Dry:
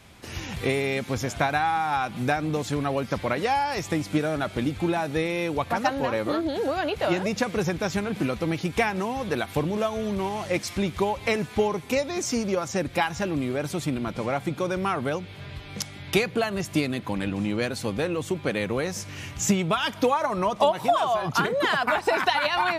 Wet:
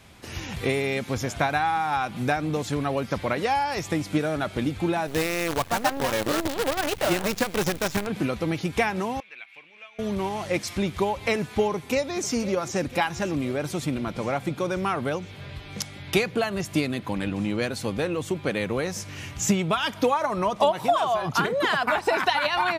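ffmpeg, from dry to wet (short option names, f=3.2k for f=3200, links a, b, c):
-filter_complex "[0:a]asettb=1/sr,asplit=3[a][b][c];[a]atrim=end=5.074[d];[b]atrim=start=5.07:end=8.07,asetpts=PTS-STARTPTS,afade=t=in:d=0.004:c=qsin,afade=t=out:st=2.996:d=0.004:c=qsin,acrusher=bits=5:dc=4:mix=0:aa=0.000001[e];[c]atrim=start=8.066[f];[d][e]acrossfade=d=0.004:c1=hsin:c2=qsin[g];[g][f]acrossfade=d=0.004:c1=qsin:c2=hsin,asettb=1/sr,asplit=3[h][i][j];[h]atrim=end=9.204[k];[i]atrim=start=9.2:end=9.99,asetpts=PTS-STARTPTS,afade=t=in:d=0.004:c=qsin,afade=t=out:st=0.786:d=0.004:c=qsin,bandpass=f=2.4k:t=q:w=7[l];[j]atrim=start=9.986[m];[k][l]acrossfade=d=0.004:c1=hsin:c2=qsin[n];[n][m]acrossfade=d=0.004:c1=qsin:c2=hsin,asplit=2[o][p];[p]afade=t=in:st=11.72:d=0.01,afade=t=out:st=12.35:d=0.01,aecho=0:1:500|1000|1500|2000|2500|3000|3500|4000|4500:0.177828|0.12448|0.0871357|0.060995|0.0426965|0.0298875|0.0209213|0.0146449|0.0102514[q];[o][q]amix=inputs=2:normalize=0"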